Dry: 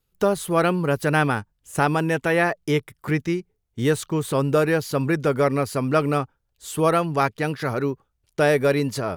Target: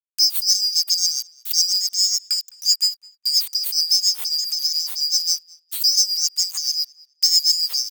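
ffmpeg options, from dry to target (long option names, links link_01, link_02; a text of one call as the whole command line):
ffmpeg -i in.wav -filter_complex "[0:a]afftfilt=real='real(if(lt(b,736),b+184*(1-2*mod(floor(b/184),2)),b),0)':imag='imag(if(lt(b,736),b+184*(1-2*mod(floor(b/184),2)),b),0)':win_size=2048:overlap=0.75,highpass=160,lowshelf=frequency=350:gain=-4.5,asplit=2[link_01][link_02];[link_02]acompressor=threshold=-27dB:ratio=12,volume=0.5dB[link_03];[link_01][link_03]amix=inputs=2:normalize=0,aeval=exprs='val(0)*gte(abs(val(0)),0.0266)':channel_layout=same,asetrate=51156,aresample=44100,asoftclip=type=tanh:threshold=-10dB,crystalizer=i=9:c=0,tremolo=f=7.3:d=0.64,asplit=2[link_04][link_05];[link_05]adelay=209,lowpass=frequency=3900:poles=1,volume=-22.5dB,asplit=2[link_06][link_07];[link_07]adelay=209,lowpass=frequency=3900:poles=1,volume=0.22[link_08];[link_06][link_08]amix=inputs=2:normalize=0[link_09];[link_04][link_09]amix=inputs=2:normalize=0,adynamicequalizer=threshold=0.141:dfrequency=2800:dqfactor=0.7:tfrequency=2800:tqfactor=0.7:attack=5:release=100:ratio=0.375:range=1.5:mode=cutabove:tftype=highshelf,volume=-12.5dB" out.wav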